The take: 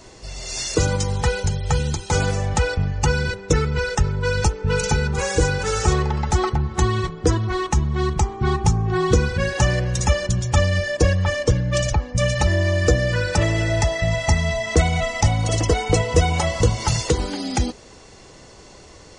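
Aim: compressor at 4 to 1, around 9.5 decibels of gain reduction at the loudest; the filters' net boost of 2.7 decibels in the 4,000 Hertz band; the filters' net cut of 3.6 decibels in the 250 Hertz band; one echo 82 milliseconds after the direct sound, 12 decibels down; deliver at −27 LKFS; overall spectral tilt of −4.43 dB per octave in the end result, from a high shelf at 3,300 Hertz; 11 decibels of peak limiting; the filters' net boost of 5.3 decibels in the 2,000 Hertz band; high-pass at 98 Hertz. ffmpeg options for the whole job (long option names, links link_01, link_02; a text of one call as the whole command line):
ffmpeg -i in.wav -af "highpass=98,equalizer=frequency=250:width_type=o:gain=-6,equalizer=frequency=2000:width_type=o:gain=7.5,highshelf=frequency=3300:gain=-8.5,equalizer=frequency=4000:width_type=o:gain=7.5,acompressor=threshold=-26dB:ratio=4,alimiter=limit=-22.5dB:level=0:latency=1,aecho=1:1:82:0.251,volume=3.5dB" out.wav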